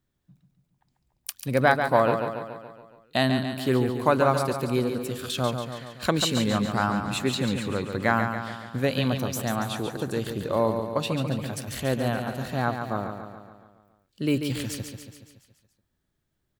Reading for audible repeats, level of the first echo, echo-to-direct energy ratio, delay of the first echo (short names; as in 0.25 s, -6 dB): 6, -7.0 dB, -5.5 dB, 0.141 s